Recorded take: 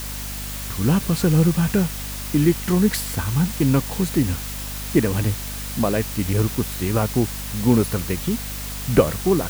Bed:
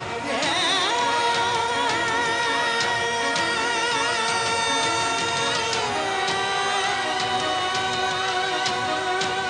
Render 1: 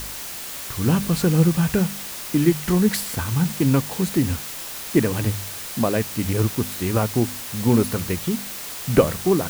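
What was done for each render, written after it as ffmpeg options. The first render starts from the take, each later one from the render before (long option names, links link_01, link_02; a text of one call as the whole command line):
ffmpeg -i in.wav -af "bandreject=frequency=50:width_type=h:width=4,bandreject=frequency=100:width_type=h:width=4,bandreject=frequency=150:width_type=h:width=4,bandreject=frequency=200:width_type=h:width=4,bandreject=frequency=250:width_type=h:width=4" out.wav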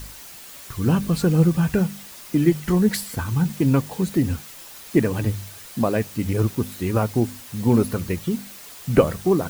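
ffmpeg -i in.wav -af "afftdn=noise_reduction=9:noise_floor=-33" out.wav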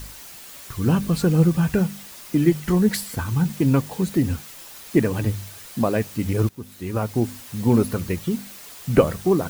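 ffmpeg -i in.wav -filter_complex "[0:a]asplit=2[link_01][link_02];[link_01]atrim=end=6.49,asetpts=PTS-STARTPTS,afade=type=out:start_time=6.486:duration=0.004:curve=hsin:silence=0.133352[link_03];[link_02]atrim=start=6.49,asetpts=PTS-STARTPTS,afade=type=in:duration=0.82:silence=0.133352[link_04];[link_03][link_04]concat=n=2:v=0:a=1" out.wav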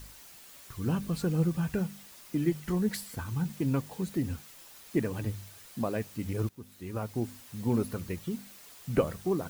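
ffmpeg -i in.wav -af "volume=-10.5dB" out.wav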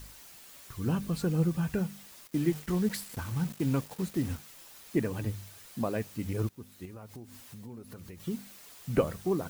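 ffmpeg -i in.wav -filter_complex "[0:a]asettb=1/sr,asplit=3[link_01][link_02][link_03];[link_01]atrim=end=2.274[link_04];[link_02]atrim=start=2.27:end=4.38,asetpts=PTS-STARTPTS,afade=type=in:duration=0.004:curve=qsin,afade=type=out:start_time=2.106:duration=0.004:curve=qsin,acrusher=bits=6:mix=0:aa=0.5[link_05];[link_03]atrim=start=4.376[link_06];[link_04][link_05]acrossfade=duration=0.004:curve1=hsin:curve2=qsin[link_07];[link_07][link_06]acrossfade=duration=0.004:curve1=qsin:curve2=hsin,asettb=1/sr,asplit=3[link_08][link_09][link_10];[link_08]atrim=end=6.854[link_11];[link_09]atrim=start=6.85:end=8.2,asetpts=PTS-STARTPTS,afade=type=in:duration=0.004:curve=qsin,afade=type=out:start_time=1.346:duration=0.004:curve=qsin,acompressor=threshold=-43dB:ratio=6:attack=3.2:release=140:knee=1:detection=peak[link_12];[link_10]atrim=start=8.196[link_13];[link_11][link_12]acrossfade=duration=0.004:curve1=hsin:curve2=qsin[link_14];[link_14][link_13]acrossfade=duration=0.004:curve1=qsin:curve2=hsin" out.wav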